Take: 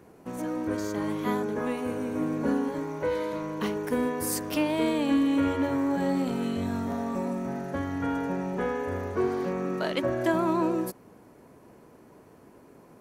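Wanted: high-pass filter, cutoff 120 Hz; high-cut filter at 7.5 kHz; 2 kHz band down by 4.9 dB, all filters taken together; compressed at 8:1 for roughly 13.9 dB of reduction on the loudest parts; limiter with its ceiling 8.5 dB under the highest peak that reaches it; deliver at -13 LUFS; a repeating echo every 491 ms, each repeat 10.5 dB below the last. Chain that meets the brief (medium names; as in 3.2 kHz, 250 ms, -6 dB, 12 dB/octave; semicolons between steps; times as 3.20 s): high-pass 120 Hz; low-pass 7.5 kHz; peaking EQ 2 kHz -6.5 dB; compression 8:1, threshold -36 dBFS; peak limiter -34 dBFS; feedback delay 491 ms, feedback 30%, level -10.5 dB; trim +29 dB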